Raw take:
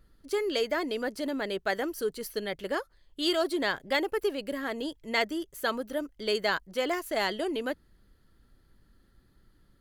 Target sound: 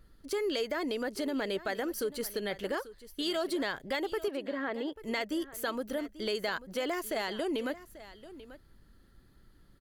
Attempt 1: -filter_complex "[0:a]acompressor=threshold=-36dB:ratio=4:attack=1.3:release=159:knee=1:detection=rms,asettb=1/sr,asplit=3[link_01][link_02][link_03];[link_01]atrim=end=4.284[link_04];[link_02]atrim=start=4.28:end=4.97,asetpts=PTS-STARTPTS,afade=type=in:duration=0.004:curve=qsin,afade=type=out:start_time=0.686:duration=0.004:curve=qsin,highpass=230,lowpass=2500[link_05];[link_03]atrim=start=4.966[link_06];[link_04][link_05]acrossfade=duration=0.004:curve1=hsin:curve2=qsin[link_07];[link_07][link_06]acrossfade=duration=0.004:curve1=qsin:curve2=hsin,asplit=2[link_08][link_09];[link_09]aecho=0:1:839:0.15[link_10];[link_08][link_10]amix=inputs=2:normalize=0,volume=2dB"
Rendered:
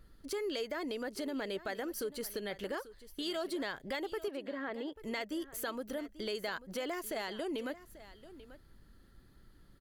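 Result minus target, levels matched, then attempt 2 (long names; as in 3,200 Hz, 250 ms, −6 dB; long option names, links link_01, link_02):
downward compressor: peak gain reduction +5 dB
-filter_complex "[0:a]acompressor=threshold=-29.5dB:ratio=4:attack=1.3:release=159:knee=1:detection=rms,asettb=1/sr,asplit=3[link_01][link_02][link_03];[link_01]atrim=end=4.284[link_04];[link_02]atrim=start=4.28:end=4.97,asetpts=PTS-STARTPTS,afade=type=in:duration=0.004:curve=qsin,afade=type=out:start_time=0.686:duration=0.004:curve=qsin,highpass=230,lowpass=2500[link_05];[link_03]atrim=start=4.966[link_06];[link_04][link_05]acrossfade=duration=0.004:curve1=hsin:curve2=qsin[link_07];[link_07][link_06]acrossfade=duration=0.004:curve1=qsin:curve2=hsin,asplit=2[link_08][link_09];[link_09]aecho=0:1:839:0.15[link_10];[link_08][link_10]amix=inputs=2:normalize=0,volume=2dB"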